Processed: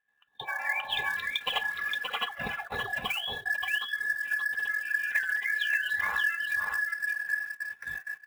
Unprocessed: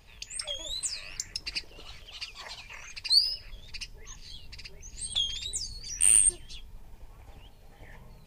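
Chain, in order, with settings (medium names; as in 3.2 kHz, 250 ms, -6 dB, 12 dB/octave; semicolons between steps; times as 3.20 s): bass shelf 62 Hz +5.5 dB; comb 3.2 ms, depth 52%; ring modulator 1.7 kHz; resampled via 8 kHz; compression 20:1, threshold -38 dBFS, peak gain reduction 16.5 dB; short-mantissa float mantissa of 2-bit; spectral noise reduction 11 dB; delay 577 ms -4 dB; level rider gain up to 13.5 dB; 0.42–0.98 s: spectral replace 550–1100 Hz after; 2.29–4.62 s: peaking EQ 2.6 kHz -8.5 dB 0.38 oct; gate -37 dBFS, range -16 dB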